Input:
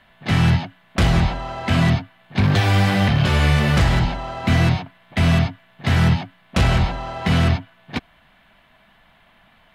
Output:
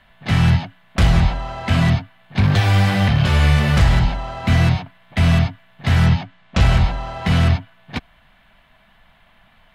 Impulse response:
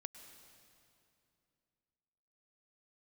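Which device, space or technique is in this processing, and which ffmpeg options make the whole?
low shelf boost with a cut just above: -filter_complex "[0:a]asettb=1/sr,asplit=3[a][b][c];[a]atrim=end=6.064[d];[b]atrim=start=6.06:end=6.61,asetpts=PTS-STARTPTS,afade=t=in:d=0.004:c=qsin,afade=t=out:st=0.546:d=0.004:c=qsin,lowpass=f=7.4k:w=0.5412,lowpass=f=7.4k:w=1.3066[e];[c]atrim=start=6.606[f];[d][e]acrossfade=d=0.004:c1=hsin:c2=qsin[g];[g][f]acrossfade=d=0.004:c1=qsin:c2=hsin,lowshelf=f=70:g=8,equalizer=f=330:t=o:w=0.95:g=-4"

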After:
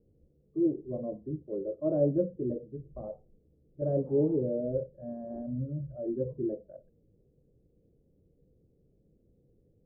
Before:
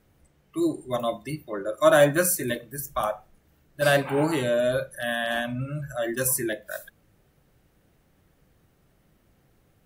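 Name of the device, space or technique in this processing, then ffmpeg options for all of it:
under water: -af "lowpass=f=440:w=0.5412,lowpass=f=440:w=1.3066,equalizer=f=480:t=o:w=0.43:g=10,volume=-3.5dB"

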